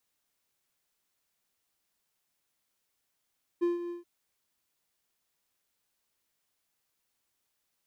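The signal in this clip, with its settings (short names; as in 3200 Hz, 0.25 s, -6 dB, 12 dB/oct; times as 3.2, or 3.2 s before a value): ADSR triangle 347 Hz, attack 21 ms, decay 0.151 s, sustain -11 dB, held 0.29 s, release 0.139 s -21 dBFS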